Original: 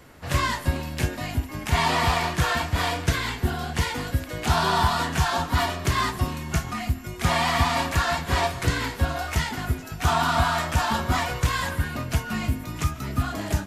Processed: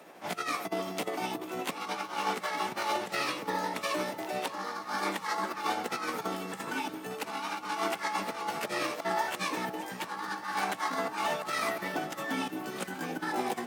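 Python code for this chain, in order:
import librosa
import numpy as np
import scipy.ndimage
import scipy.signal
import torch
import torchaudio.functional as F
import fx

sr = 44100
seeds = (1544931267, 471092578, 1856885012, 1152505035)

p1 = fx.pitch_heads(x, sr, semitones=3.5)
p2 = fx.over_compress(p1, sr, threshold_db=-28.0, ratio=-0.5)
p3 = scipy.signal.sosfilt(scipy.signal.butter(4, 200.0, 'highpass', fs=sr, output='sos'), p2)
p4 = fx.peak_eq(p3, sr, hz=670.0, db=8.0, octaves=1.5)
p5 = p4 + fx.echo_alternate(p4, sr, ms=594, hz=1400.0, feedback_pct=66, wet_db=-12.0, dry=0)
y = p5 * 10.0 ** (-7.0 / 20.0)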